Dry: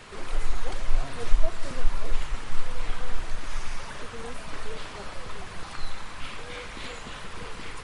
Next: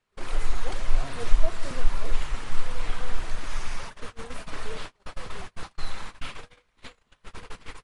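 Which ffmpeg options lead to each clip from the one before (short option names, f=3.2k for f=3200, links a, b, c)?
-af "agate=range=-34dB:threshold=-32dB:ratio=16:detection=peak,volume=1dB"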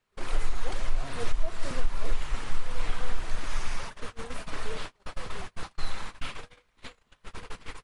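-af "alimiter=limit=-13dB:level=0:latency=1:release=227"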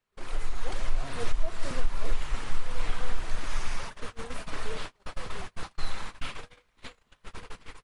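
-af "dynaudnorm=f=120:g=9:m=5dB,volume=-5dB"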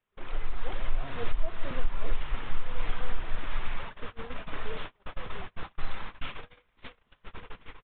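-af "aresample=8000,aresample=44100,volume=-1dB"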